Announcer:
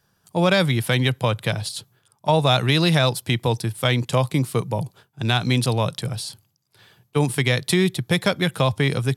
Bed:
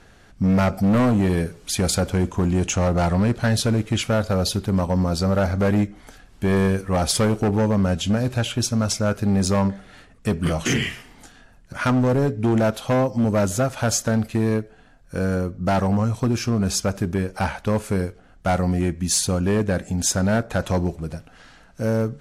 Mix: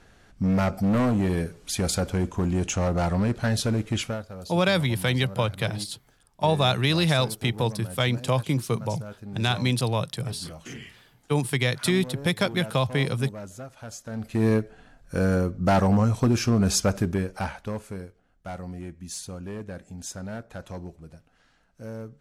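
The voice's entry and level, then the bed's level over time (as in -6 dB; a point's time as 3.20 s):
4.15 s, -4.0 dB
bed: 4.04 s -4.5 dB
4.27 s -18.5 dB
14.02 s -18.5 dB
14.45 s 0 dB
16.96 s 0 dB
18.10 s -15.5 dB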